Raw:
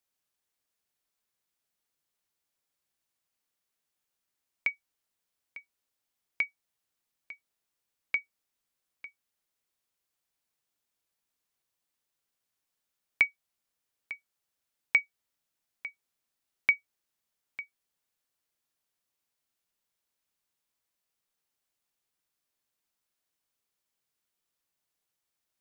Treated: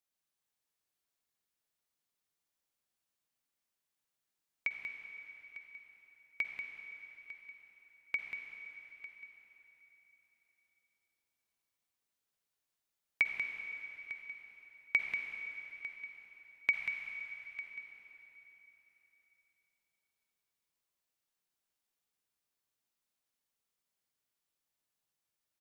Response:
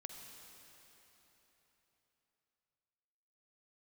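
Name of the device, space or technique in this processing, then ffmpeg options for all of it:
cave: -filter_complex "[0:a]aecho=1:1:188:0.398[a];[1:a]atrim=start_sample=2205[b];[a][b]afir=irnorm=-1:irlink=0,asettb=1/sr,asplit=3[c][d][e];[c]atrim=end=16.714[f];[d]atrim=start=16.71:end=17.62,asetpts=PTS-STARTPTS,afade=t=in:d=0.004:c=qsin,afade=t=out:st=0.906:d=0.004:c=qsin,equalizer=f=360:w=1.9:g=-13.5[g];[e]atrim=start=17.616[h];[f][g]acrossfade=d=0.004:c1=hsin:c2=qsin[i];[i][h]acrossfade=d=0.004:c1=qsin:c2=hsin"

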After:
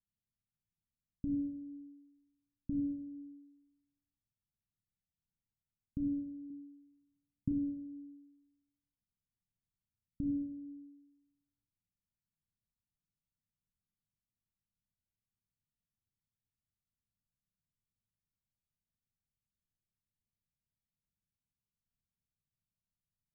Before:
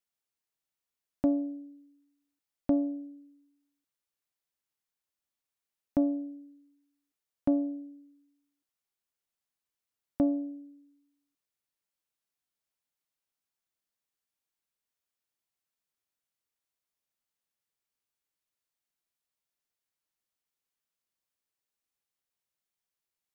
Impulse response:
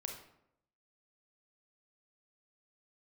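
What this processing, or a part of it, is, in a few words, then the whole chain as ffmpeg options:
club heard from the street: -filter_complex "[0:a]alimiter=level_in=4dB:limit=-24dB:level=0:latency=1,volume=-4dB,lowpass=f=190:w=0.5412,lowpass=f=190:w=1.3066[a];[1:a]atrim=start_sample=2205[b];[a][b]afir=irnorm=-1:irlink=0,asettb=1/sr,asplit=3[c][d][e];[c]atrim=end=6.504[f];[d]atrim=start=6.5:end=7.52,asetpts=PTS-STARTPTS,afade=t=in:d=0.004:c=qsin,afade=t=out:st=1.016:d=0.004:c=qsin,equalizer=f=125:t=o:w=1:g=7,equalizer=f=250:t=o:w=1:g=5,equalizer=f=500:t=o:w=1:g=-9,equalizer=f=1k:t=o:w=1:g=11[g];[e]atrim=start=7.516[h];[f][g]acrossfade=d=0.004:c1=hsin:c2=qsin[i];[i][h]acrossfade=d=0.004:c1=qsin:c2=hsin,volume=14dB"

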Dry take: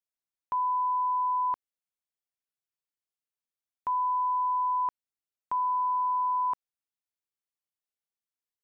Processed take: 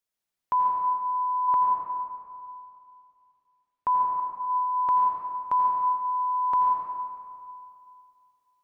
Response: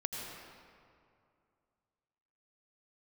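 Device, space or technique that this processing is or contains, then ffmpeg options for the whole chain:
stairwell: -filter_complex "[0:a]asettb=1/sr,asplit=3[a][b][c];[a]atrim=end=1.484[d];[b]atrim=start=1.48:end=4.2,asetpts=PTS-STARTPTS,afade=t=in:d=0.004:c=qsin,afade=t=out:st=2.716:d=0.004:c=qsin,aemphasis=mode=reproduction:type=75fm[e];[c]atrim=start=4.196[f];[d][e]acrossfade=d=0.004:c1=hsin:c2=qsin[g];[g][f]acrossfade=d=0.004:c1=qsin:c2=hsin[h];[1:a]atrim=start_sample=2205[i];[h][i]afir=irnorm=-1:irlink=0,volume=6.5dB"

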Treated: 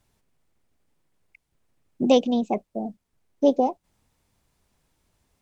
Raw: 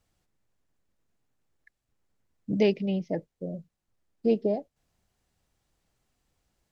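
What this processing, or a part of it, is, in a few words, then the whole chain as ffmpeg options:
nightcore: -af "asetrate=54684,aresample=44100,volume=5.5dB"

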